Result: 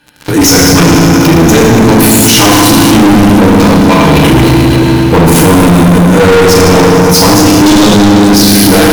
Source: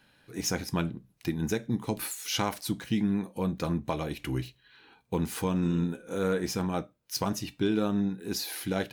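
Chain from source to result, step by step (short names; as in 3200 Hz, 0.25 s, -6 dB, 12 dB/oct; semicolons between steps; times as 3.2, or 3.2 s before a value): 3.46–4.06 low shelf 500 Hz -8.5 dB; FDN reverb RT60 2.1 s, low-frequency decay 1.55×, high-frequency decay 0.85×, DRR -5 dB; one-sided clip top -25 dBFS, bottom -13 dBFS; 7.66–8.28 band shelf 5300 Hz +11 dB; diffused feedback echo 0.479 s, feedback 40%, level -13.5 dB; sample leveller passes 5; maximiser +23 dB; gain -1 dB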